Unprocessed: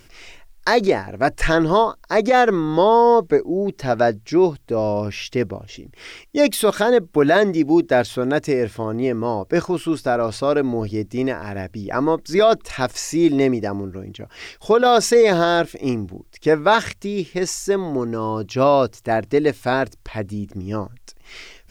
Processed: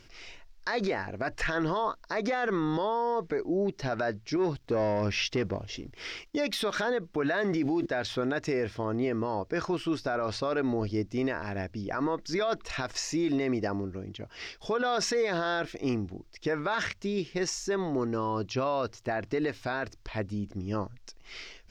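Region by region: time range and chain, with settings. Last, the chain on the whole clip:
4.36–6.36 s: compression 10:1, threshold -19 dBFS + waveshaping leveller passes 1
7.33–7.86 s: block-companded coder 7-bit + treble shelf 7.1 kHz -5 dB + level flattener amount 50%
whole clip: dynamic bell 1.6 kHz, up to +7 dB, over -31 dBFS, Q 0.81; peak limiter -15 dBFS; resonant high shelf 7.3 kHz -10.5 dB, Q 1.5; trim -6 dB

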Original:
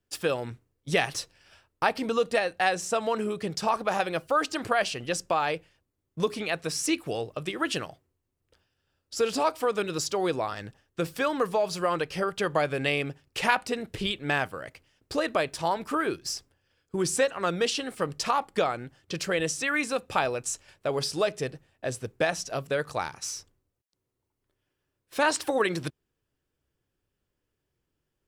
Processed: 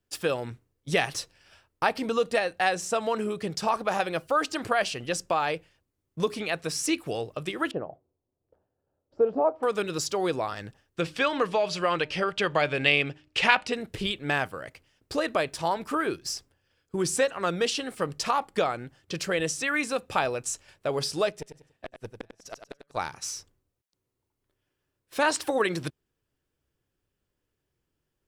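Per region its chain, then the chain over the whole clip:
7.71–9.63 s: bass shelf 95 Hz -9 dB + de-esser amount 75% + resonant low-pass 670 Hz, resonance Q 1.7
11.00–13.73 s: low-pass 7.1 kHz + peaking EQ 2.8 kHz +7.5 dB 1.3 oct + de-hum 304 Hz, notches 3
21.30–22.97 s: inverted gate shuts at -20 dBFS, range -39 dB + valve stage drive 22 dB, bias 0.8 + feedback delay 96 ms, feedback 29%, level -8 dB
whole clip: none

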